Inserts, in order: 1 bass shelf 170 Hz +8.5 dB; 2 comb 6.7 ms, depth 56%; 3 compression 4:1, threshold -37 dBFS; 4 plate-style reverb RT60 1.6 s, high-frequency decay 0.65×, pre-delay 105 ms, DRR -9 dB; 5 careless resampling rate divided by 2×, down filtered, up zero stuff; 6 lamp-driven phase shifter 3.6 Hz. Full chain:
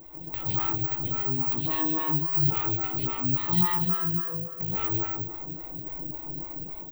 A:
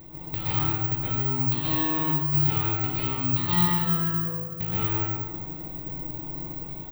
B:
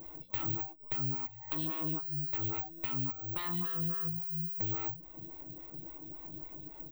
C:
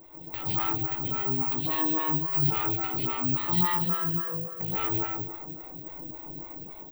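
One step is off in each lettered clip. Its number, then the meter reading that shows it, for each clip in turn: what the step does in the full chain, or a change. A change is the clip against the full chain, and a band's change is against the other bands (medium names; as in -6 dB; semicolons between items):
6, 4 kHz band +3.0 dB; 4, 1 kHz band -2.5 dB; 1, 125 Hz band -4.0 dB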